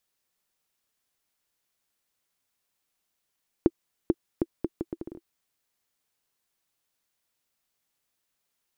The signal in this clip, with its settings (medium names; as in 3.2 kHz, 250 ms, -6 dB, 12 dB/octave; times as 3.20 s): bouncing ball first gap 0.44 s, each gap 0.72, 336 Hz, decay 42 ms -7 dBFS